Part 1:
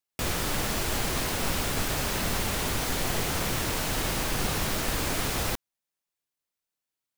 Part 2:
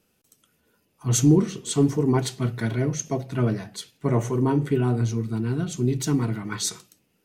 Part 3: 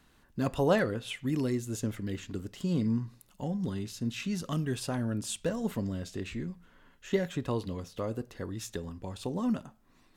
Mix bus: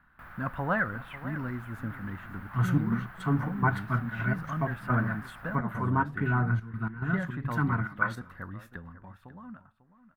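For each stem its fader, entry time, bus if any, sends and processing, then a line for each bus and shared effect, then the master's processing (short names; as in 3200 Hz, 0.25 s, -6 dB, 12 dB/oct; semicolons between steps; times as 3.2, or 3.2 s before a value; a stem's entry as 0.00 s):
-14.5 dB, 0.00 s, no send, no echo send, auto duck -7 dB, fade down 0.25 s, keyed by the third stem
-3.5 dB, 1.50 s, no send, no echo send, step gate ".x.xx.xxx" 106 bpm -12 dB
8.68 s -1.5 dB -> 9.43 s -13.5 dB, 0.00 s, no send, echo send -15 dB, bell 1200 Hz -3 dB 2.3 oct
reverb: off
echo: echo 0.546 s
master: EQ curve 200 Hz 0 dB, 430 Hz -12 dB, 640 Hz -1 dB, 1500 Hz +14 dB, 2600 Hz -7 dB, 6700 Hz -28 dB, 13000 Hz -10 dB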